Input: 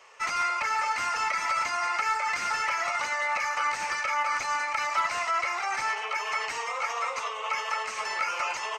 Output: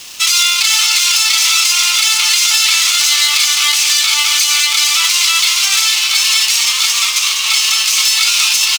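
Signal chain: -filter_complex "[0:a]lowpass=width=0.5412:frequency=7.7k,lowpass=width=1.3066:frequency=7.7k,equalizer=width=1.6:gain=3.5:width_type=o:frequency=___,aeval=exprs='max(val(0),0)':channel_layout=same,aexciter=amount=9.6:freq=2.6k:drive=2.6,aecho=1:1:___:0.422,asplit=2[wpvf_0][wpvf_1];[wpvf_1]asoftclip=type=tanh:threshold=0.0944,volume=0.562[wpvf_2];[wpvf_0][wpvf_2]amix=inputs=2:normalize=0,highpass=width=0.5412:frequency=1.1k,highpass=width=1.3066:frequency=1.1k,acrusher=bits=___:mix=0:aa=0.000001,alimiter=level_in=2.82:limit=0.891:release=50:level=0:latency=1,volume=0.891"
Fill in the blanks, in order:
4.1k, 463, 6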